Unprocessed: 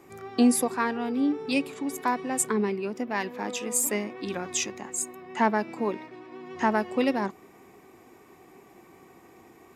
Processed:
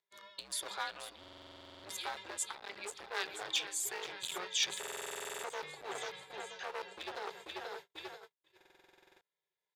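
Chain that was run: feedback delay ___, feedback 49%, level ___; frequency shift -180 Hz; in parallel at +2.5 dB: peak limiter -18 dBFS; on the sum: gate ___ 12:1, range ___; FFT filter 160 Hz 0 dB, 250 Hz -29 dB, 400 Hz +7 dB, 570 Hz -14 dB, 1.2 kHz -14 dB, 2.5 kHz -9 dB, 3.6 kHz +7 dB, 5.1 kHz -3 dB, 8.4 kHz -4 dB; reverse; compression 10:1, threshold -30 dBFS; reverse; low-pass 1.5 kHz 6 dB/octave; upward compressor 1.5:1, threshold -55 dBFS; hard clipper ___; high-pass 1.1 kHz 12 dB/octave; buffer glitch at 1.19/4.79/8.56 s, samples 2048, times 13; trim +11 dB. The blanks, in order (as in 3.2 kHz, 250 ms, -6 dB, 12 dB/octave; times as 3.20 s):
486 ms, -13 dB, -35 dBFS, -51 dB, -32.5 dBFS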